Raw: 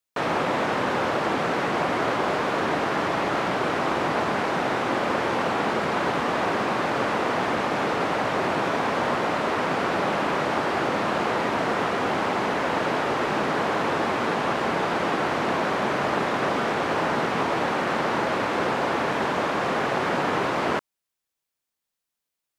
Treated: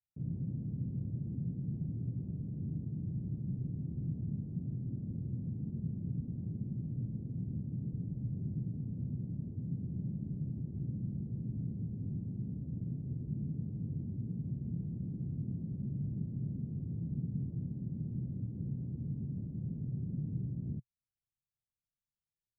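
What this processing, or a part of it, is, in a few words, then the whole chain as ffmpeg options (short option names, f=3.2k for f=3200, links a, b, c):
the neighbour's flat through the wall: -af "lowpass=f=160:w=0.5412,lowpass=f=160:w=1.3066,equalizer=f=120:t=o:w=0.61:g=4,volume=1dB"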